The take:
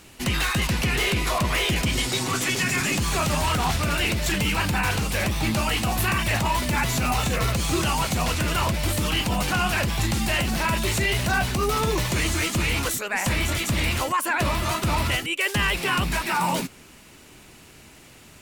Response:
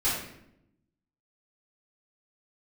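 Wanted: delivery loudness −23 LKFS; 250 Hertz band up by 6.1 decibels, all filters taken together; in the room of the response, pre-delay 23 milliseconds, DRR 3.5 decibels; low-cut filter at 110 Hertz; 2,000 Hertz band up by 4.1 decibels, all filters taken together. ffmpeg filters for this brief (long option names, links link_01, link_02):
-filter_complex "[0:a]highpass=110,equalizer=frequency=250:width_type=o:gain=8.5,equalizer=frequency=2000:width_type=o:gain=5,asplit=2[link_01][link_02];[1:a]atrim=start_sample=2205,adelay=23[link_03];[link_02][link_03]afir=irnorm=-1:irlink=0,volume=-14dB[link_04];[link_01][link_04]amix=inputs=2:normalize=0,volume=-4dB"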